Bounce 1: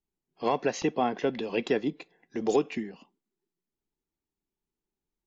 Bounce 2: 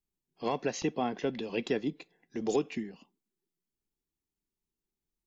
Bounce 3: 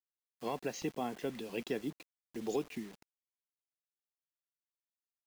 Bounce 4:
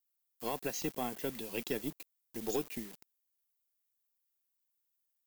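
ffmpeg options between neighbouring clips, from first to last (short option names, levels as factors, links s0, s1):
-af "equalizer=f=930:w=0.33:g=-6"
-af "acrusher=bits=7:mix=0:aa=0.000001,volume=0.501"
-af "aeval=exprs='0.0708*(cos(1*acos(clip(val(0)/0.0708,-1,1)))-cos(1*PI/2))+0.00251*(cos(6*acos(clip(val(0)/0.0708,-1,1)))-cos(6*PI/2))+0.00178*(cos(7*acos(clip(val(0)/0.0708,-1,1)))-cos(7*PI/2))':c=same,aemphasis=mode=production:type=50fm"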